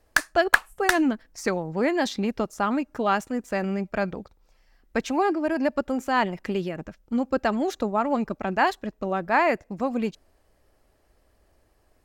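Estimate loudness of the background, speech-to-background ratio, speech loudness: -24.5 LUFS, -1.5 dB, -26.0 LUFS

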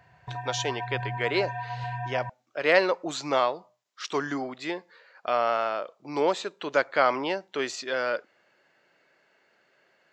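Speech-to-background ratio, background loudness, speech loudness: 7.0 dB, -35.0 LUFS, -28.0 LUFS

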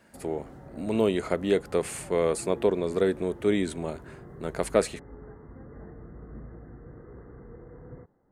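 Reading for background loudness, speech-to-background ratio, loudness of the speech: -46.5 LUFS, 18.5 dB, -28.0 LUFS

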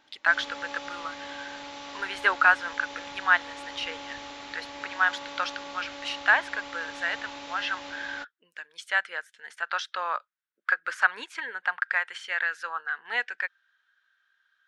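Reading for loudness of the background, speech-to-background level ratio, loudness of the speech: -40.0 LUFS, 12.0 dB, -28.0 LUFS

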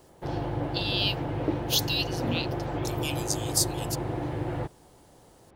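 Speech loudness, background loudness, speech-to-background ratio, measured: -30.0 LUFS, -32.0 LUFS, 2.0 dB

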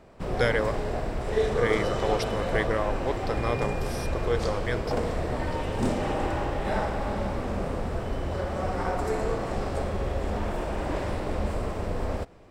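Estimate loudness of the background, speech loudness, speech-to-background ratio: -30.0 LUFS, -30.5 LUFS, -0.5 dB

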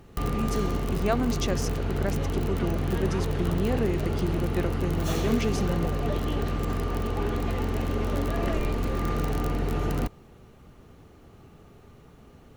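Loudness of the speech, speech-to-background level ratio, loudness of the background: -31.5 LUFS, -2.5 dB, -29.0 LUFS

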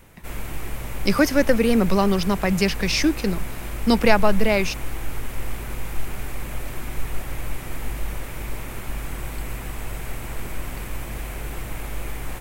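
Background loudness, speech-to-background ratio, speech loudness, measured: -33.5 LUFS, 12.5 dB, -21.0 LUFS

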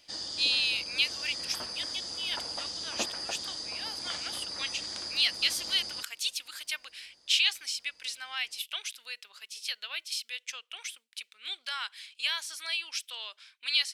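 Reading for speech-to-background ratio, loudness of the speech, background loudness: 3.5 dB, -32.0 LUFS, -35.5 LUFS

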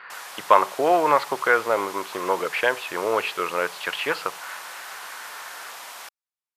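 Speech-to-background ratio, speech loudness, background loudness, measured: 15.0 dB, -23.0 LUFS, -38.0 LUFS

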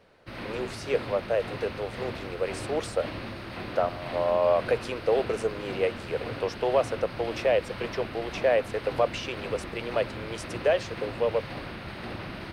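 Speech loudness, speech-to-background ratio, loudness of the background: -29.0 LUFS, 8.5 dB, -37.5 LUFS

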